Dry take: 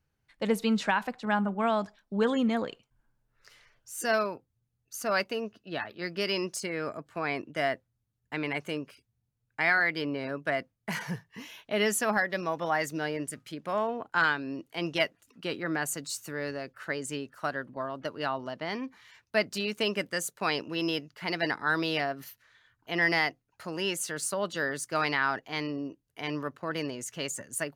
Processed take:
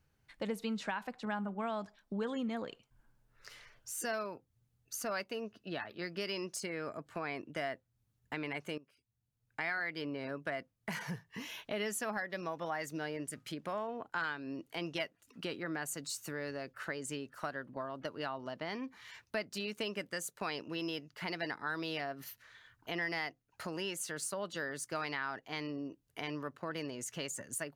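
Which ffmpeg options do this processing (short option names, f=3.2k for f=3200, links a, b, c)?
-filter_complex "[0:a]asplit=2[a][b];[a]atrim=end=8.78,asetpts=PTS-STARTPTS,afade=t=out:st=8.776:d=0.004:c=hsin:silence=0.133352[c];[b]atrim=start=8.78,asetpts=PTS-STARTPTS,afade=t=in:d=0.92:c=qua:silence=0.133352[d];[c][d]concat=n=2:v=0:a=1,acompressor=threshold=-45dB:ratio=2.5,volume=3.5dB"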